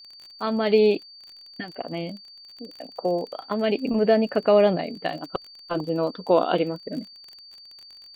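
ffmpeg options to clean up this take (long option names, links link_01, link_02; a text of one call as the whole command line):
ffmpeg -i in.wav -af "adeclick=threshold=4,bandreject=frequency=4600:width=30" out.wav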